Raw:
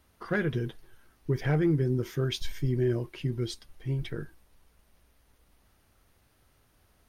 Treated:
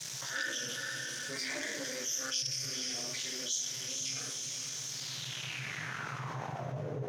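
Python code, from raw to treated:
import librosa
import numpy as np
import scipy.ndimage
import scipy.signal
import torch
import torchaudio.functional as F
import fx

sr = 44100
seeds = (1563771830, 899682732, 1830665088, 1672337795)

y = fx.spec_ripple(x, sr, per_octave=1.0, drift_hz=-0.63, depth_db=16)
y = fx.dmg_noise_colour(y, sr, seeds[0], colour='brown', level_db=-41.0)
y = fx.low_shelf(y, sr, hz=330.0, db=-6.0)
y = fx.room_shoebox(y, sr, seeds[1], volume_m3=78.0, walls='mixed', distance_m=2.4)
y = fx.leveller(y, sr, passes=2)
y = y * np.sin(2.0 * np.pi * 130.0 * np.arange(len(y)) / sr)
y = fx.filter_sweep_bandpass(y, sr, from_hz=6000.0, to_hz=460.0, start_s=4.85, end_s=6.99, q=4.1)
y = scipy.signal.sosfilt(scipy.signal.butter(2, 120.0, 'highpass', fs=sr, output='sos'), y)
y = fx.high_shelf(y, sr, hz=8300.0, db=6.5)
y = fx.echo_diffused(y, sr, ms=494, feedback_pct=48, wet_db=-11)
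y = fx.env_flatten(y, sr, amount_pct=70)
y = F.gain(torch.from_numpy(y), -7.0).numpy()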